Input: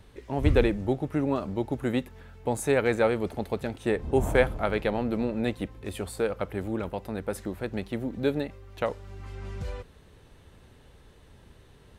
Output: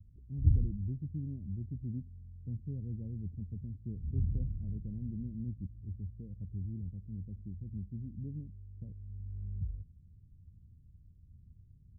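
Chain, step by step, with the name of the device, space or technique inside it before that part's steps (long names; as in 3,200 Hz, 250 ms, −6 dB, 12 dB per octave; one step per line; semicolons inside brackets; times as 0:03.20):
the neighbour's flat through the wall (low-pass filter 190 Hz 24 dB per octave; parametric band 90 Hz +7 dB 0.62 octaves)
level −5 dB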